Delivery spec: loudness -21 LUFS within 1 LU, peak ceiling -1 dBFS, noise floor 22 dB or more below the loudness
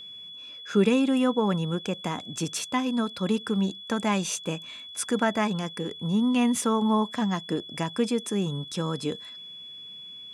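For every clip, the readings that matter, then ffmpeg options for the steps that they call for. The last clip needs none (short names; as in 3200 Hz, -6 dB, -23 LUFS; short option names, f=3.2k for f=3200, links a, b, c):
steady tone 3400 Hz; tone level -40 dBFS; loudness -27.0 LUFS; peak -10.0 dBFS; loudness target -21.0 LUFS
-> -af "bandreject=f=3.4k:w=30"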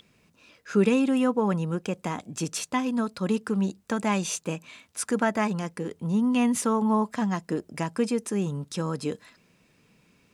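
steady tone none; loudness -27.0 LUFS; peak -10.0 dBFS; loudness target -21.0 LUFS
-> -af "volume=6dB"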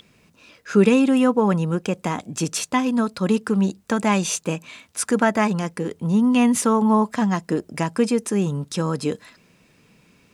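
loudness -21.0 LUFS; peak -4.0 dBFS; noise floor -58 dBFS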